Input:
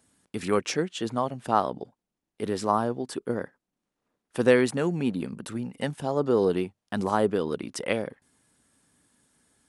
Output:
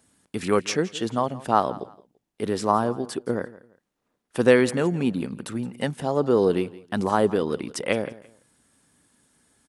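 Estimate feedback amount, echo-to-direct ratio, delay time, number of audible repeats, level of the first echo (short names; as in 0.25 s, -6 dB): 26%, -18.5 dB, 0.169 s, 2, -19.0 dB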